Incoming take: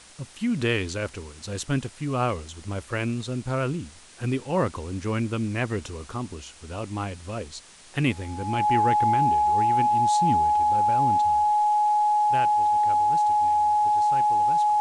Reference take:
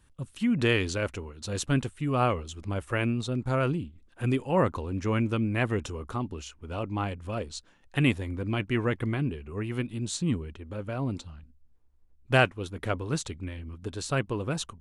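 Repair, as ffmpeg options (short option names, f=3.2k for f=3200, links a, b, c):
-af "bandreject=f=840:w=30,afwtdn=0.0045,asetnsamples=n=441:p=0,asendcmd='12.14 volume volume 11dB',volume=0dB"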